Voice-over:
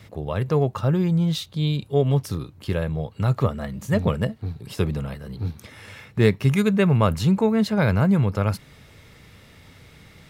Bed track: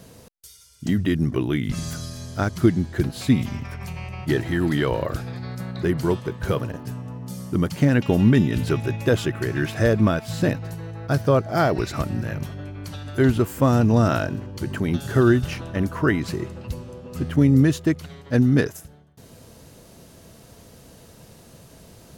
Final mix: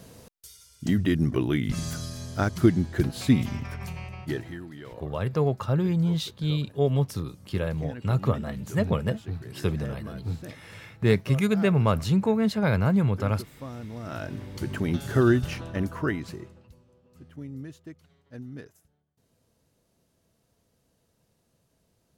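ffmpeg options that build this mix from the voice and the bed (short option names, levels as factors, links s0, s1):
-filter_complex "[0:a]adelay=4850,volume=0.668[s0];[1:a]volume=5.96,afade=t=out:st=3.79:d=0.87:silence=0.112202,afade=t=in:st=14.03:d=0.51:silence=0.133352,afade=t=out:st=15.65:d=1.06:silence=0.105925[s1];[s0][s1]amix=inputs=2:normalize=0"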